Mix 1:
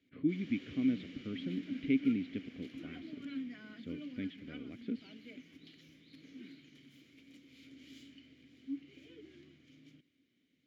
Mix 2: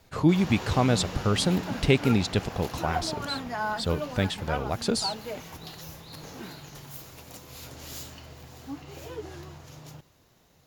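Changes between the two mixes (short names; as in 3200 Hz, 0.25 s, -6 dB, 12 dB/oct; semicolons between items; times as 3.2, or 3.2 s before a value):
speech: remove air absorption 460 m; master: remove vowel filter i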